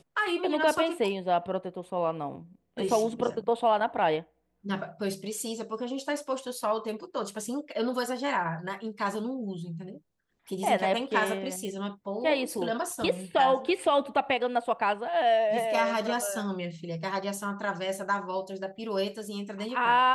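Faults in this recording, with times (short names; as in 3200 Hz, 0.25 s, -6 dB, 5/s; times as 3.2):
11.65 pop -26 dBFS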